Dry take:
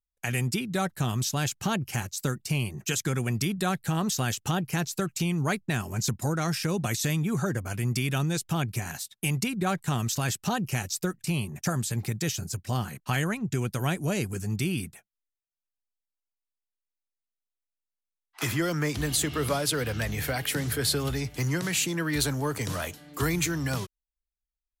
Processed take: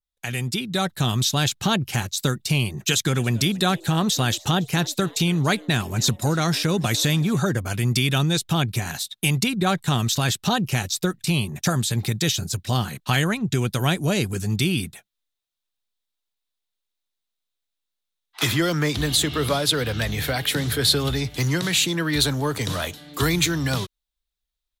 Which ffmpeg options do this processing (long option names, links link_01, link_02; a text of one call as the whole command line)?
ffmpeg -i in.wav -filter_complex "[0:a]asplit=3[link_01][link_02][link_03];[link_01]afade=type=out:start_time=3.05:duration=0.02[link_04];[link_02]asplit=5[link_05][link_06][link_07][link_08][link_09];[link_06]adelay=282,afreqshift=130,volume=-23dB[link_10];[link_07]adelay=564,afreqshift=260,volume=-28.2dB[link_11];[link_08]adelay=846,afreqshift=390,volume=-33.4dB[link_12];[link_09]adelay=1128,afreqshift=520,volume=-38.6dB[link_13];[link_05][link_10][link_11][link_12][link_13]amix=inputs=5:normalize=0,afade=type=in:start_time=3.05:duration=0.02,afade=type=out:start_time=7.38:duration=0.02[link_14];[link_03]afade=type=in:start_time=7.38:duration=0.02[link_15];[link_04][link_14][link_15]amix=inputs=3:normalize=0,equalizer=frequency=3700:width=2.9:gain=11,dynaudnorm=framelen=120:gausssize=13:maxgain=6dB,adynamicequalizer=threshold=0.0251:dfrequency=2200:dqfactor=0.7:tfrequency=2200:tqfactor=0.7:attack=5:release=100:ratio=0.375:range=1.5:mode=cutabove:tftype=highshelf" out.wav